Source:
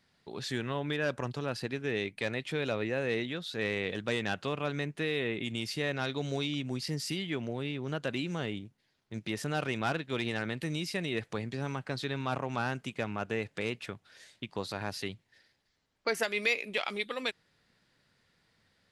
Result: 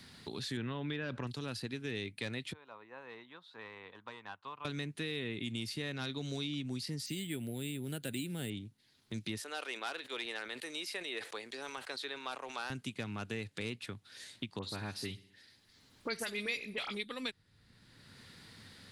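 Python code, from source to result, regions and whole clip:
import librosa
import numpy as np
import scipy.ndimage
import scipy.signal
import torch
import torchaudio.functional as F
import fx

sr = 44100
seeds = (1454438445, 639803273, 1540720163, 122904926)

y = fx.chain(x, sr, fx.lowpass(hz=2600.0, slope=12),
    fx.env_flatten(amount_pct=50), at=(0.57, 1.27))
y = fx.chain(y, sr, fx.bandpass_q(hz=990.0, q=5.0),
    fx.upward_expand(threshold_db=-60.0, expansion=1.5), at=(2.53, 4.65))
y = fx.chain(y, sr, fx.peak_eq(hz=1100.0, db=-14.5, octaves=0.42),
    fx.resample_bad(factor=4, down='filtered', up='hold'), at=(7.06, 8.5))
y = fx.chain(y, sr, fx.highpass(hz=440.0, slope=24),
    fx.sustainer(db_per_s=150.0), at=(9.37, 12.7))
y = fx.chain(y, sr, fx.dispersion(late='highs', ms=45.0, hz=2500.0),
    fx.echo_feedback(ms=63, feedback_pct=51, wet_db=-20), at=(14.59, 16.95))
y = fx.graphic_eq_15(y, sr, hz=(100, 250, 630, 4000, 10000), db=(7, 5, -5, 6, 9))
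y = fx.band_squash(y, sr, depth_pct=70)
y = y * librosa.db_to_amplitude(-7.5)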